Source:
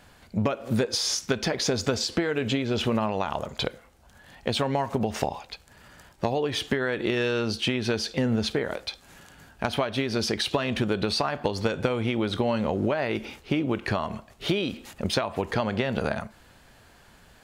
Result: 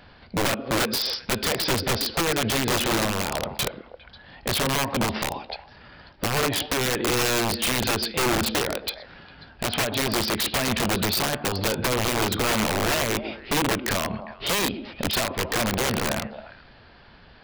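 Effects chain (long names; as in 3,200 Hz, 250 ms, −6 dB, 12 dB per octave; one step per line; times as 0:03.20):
echo through a band-pass that steps 135 ms, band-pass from 270 Hz, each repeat 1.4 octaves, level −10.5 dB
downsampling to 11,025 Hz
wrap-around overflow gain 21.5 dB
level +4 dB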